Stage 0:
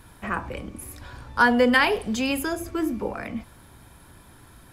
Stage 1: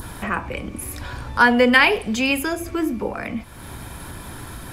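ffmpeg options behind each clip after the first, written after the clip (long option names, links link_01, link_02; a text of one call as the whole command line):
ffmpeg -i in.wav -af "adynamicequalizer=threshold=0.00891:dfrequency=2400:dqfactor=2.5:tfrequency=2400:tqfactor=2.5:attack=5:release=100:ratio=0.375:range=3.5:mode=boostabove:tftype=bell,acompressor=mode=upward:threshold=-26dB:ratio=2.5,volume=3dB" out.wav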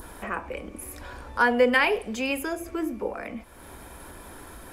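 ffmpeg -i in.wav -af "equalizer=frequency=125:width_type=o:width=1:gain=-12,equalizer=frequency=500:width_type=o:width=1:gain=5,equalizer=frequency=4000:width_type=o:width=1:gain=-4,volume=-7dB" out.wav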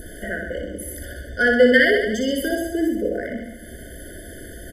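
ffmpeg -i in.wav -af "aecho=1:1:60|126|198.6|278.5|366.3:0.631|0.398|0.251|0.158|0.1,afftfilt=real='re*eq(mod(floor(b*sr/1024/730),2),0)':imag='im*eq(mod(floor(b*sr/1024/730),2),0)':win_size=1024:overlap=0.75,volume=5.5dB" out.wav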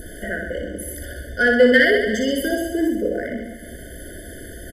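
ffmpeg -i in.wav -filter_complex "[0:a]asplit=2[link_01][link_02];[link_02]asoftclip=type=tanh:threshold=-10.5dB,volume=-11dB[link_03];[link_01][link_03]amix=inputs=2:normalize=0,aecho=1:1:335:0.133,volume=-1dB" out.wav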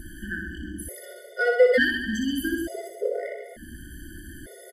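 ffmpeg -i in.wav -af "afftfilt=real='re*gt(sin(2*PI*0.56*pts/sr)*(1-2*mod(floor(b*sr/1024/370),2)),0)':imag='im*gt(sin(2*PI*0.56*pts/sr)*(1-2*mod(floor(b*sr/1024/370),2)),0)':win_size=1024:overlap=0.75,volume=-3dB" out.wav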